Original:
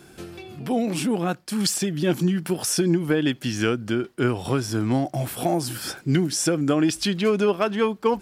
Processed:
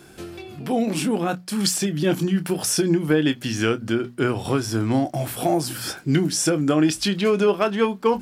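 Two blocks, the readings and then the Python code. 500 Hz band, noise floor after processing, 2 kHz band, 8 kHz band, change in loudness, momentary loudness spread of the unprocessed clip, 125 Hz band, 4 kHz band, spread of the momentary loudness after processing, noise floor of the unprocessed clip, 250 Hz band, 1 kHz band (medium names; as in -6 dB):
+2.0 dB, -43 dBFS, +2.0 dB, +2.0 dB, +1.5 dB, 6 LU, +0.5 dB, +2.0 dB, 6 LU, -49 dBFS, +1.5 dB, +2.0 dB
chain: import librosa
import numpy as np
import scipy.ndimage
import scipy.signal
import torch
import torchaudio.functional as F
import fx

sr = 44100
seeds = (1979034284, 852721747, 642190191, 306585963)

y = fx.hum_notches(x, sr, base_hz=60, count=4)
y = fx.doubler(y, sr, ms=26.0, db=-12.0)
y = F.gain(torch.from_numpy(y), 1.5).numpy()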